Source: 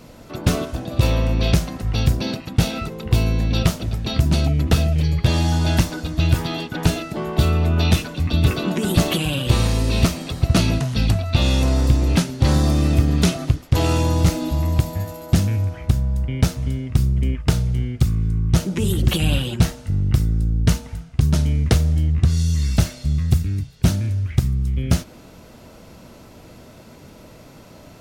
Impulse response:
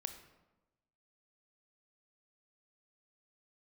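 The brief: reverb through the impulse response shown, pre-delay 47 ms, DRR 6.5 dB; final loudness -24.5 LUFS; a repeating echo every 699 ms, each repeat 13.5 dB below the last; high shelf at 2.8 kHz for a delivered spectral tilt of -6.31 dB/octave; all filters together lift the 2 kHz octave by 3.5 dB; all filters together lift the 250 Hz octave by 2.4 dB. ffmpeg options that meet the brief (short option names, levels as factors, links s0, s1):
-filter_complex "[0:a]equalizer=f=250:t=o:g=3.5,equalizer=f=2000:t=o:g=6.5,highshelf=f=2800:g=-3.5,aecho=1:1:699|1398:0.211|0.0444,asplit=2[s0][s1];[1:a]atrim=start_sample=2205,adelay=47[s2];[s1][s2]afir=irnorm=-1:irlink=0,volume=0.596[s3];[s0][s3]amix=inputs=2:normalize=0,volume=0.473"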